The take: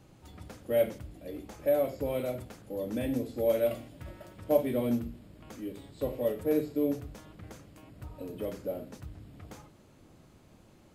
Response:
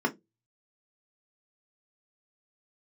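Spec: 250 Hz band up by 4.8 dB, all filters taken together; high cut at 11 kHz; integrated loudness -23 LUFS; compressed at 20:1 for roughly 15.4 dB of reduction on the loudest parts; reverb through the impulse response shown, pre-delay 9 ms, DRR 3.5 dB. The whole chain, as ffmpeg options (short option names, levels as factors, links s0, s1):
-filter_complex "[0:a]lowpass=11000,equalizer=f=250:t=o:g=5.5,acompressor=threshold=0.0251:ratio=20,asplit=2[s0][s1];[1:a]atrim=start_sample=2205,adelay=9[s2];[s1][s2]afir=irnorm=-1:irlink=0,volume=0.2[s3];[s0][s3]amix=inputs=2:normalize=0,volume=4.73"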